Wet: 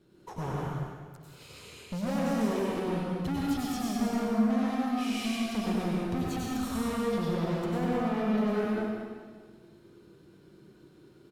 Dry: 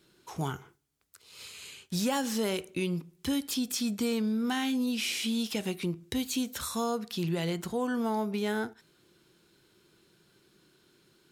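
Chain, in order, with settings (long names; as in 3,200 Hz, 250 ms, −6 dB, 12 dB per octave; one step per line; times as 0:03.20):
tilt shelving filter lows +8 dB, about 1,200 Hz
transient designer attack +5 dB, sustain −1 dB
tube saturation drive 30 dB, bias 0.45
single-tap delay 195 ms −7.5 dB
convolution reverb RT60 1.6 s, pre-delay 88 ms, DRR −5 dB
level −2.5 dB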